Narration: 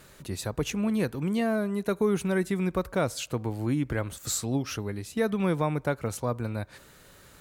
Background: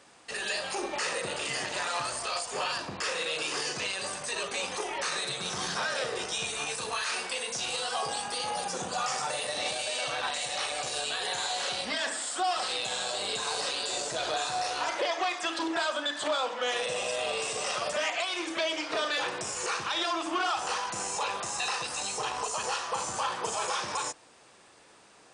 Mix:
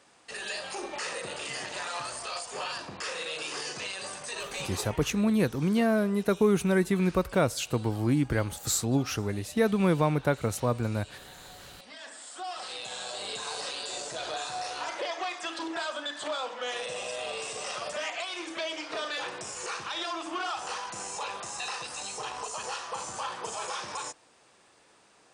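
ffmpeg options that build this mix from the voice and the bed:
ffmpeg -i stem1.wav -i stem2.wav -filter_complex "[0:a]adelay=4400,volume=2dB[link_01];[1:a]volume=11dB,afade=type=out:start_time=4.74:duration=0.37:silence=0.177828,afade=type=in:start_time=11.78:duration=1.49:silence=0.188365[link_02];[link_01][link_02]amix=inputs=2:normalize=0" out.wav

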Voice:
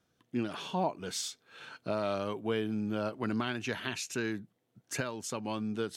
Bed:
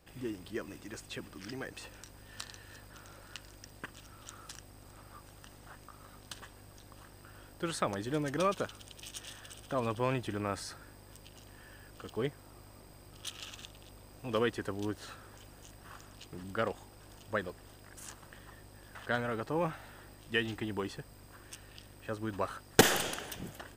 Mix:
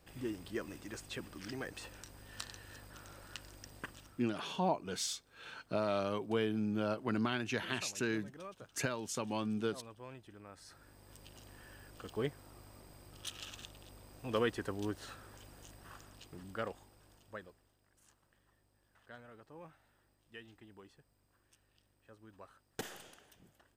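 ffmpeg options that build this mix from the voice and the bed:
ffmpeg -i stem1.wav -i stem2.wav -filter_complex "[0:a]adelay=3850,volume=-1.5dB[link_01];[1:a]volume=15.5dB,afade=type=out:start_time=3.88:duration=0.42:silence=0.133352,afade=type=in:start_time=10.54:duration=0.74:silence=0.149624,afade=type=out:start_time=15.66:duration=2.06:silence=0.11885[link_02];[link_01][link_02]amix=inputs=2:normalize=0" out.wav

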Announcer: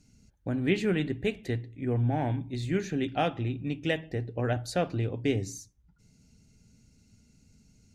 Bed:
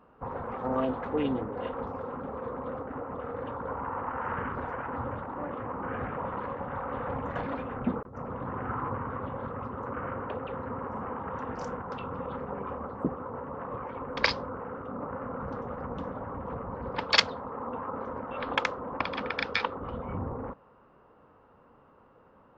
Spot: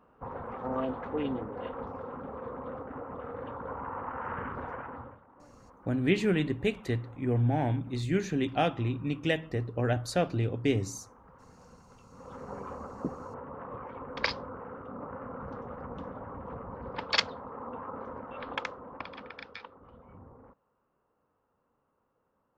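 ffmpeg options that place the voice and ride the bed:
ffmpeg -i stem1.wav -i stem2.wav -filter_complex "[0:a]adelay=5400,volume=0.5dB[link_01];[1:a]volume=13dB,afade=type=out:start_time=4.74:duration=0.45:silence=0.133352,afade=type=in:start_time=12.11:duration=0.41:silence=0.149624,afade=type=out:start_time=18.1:duration=1.53:silence=0.223872[link_02];[link_01][link_02]amix=inputs=2:normalize=0" out.wav

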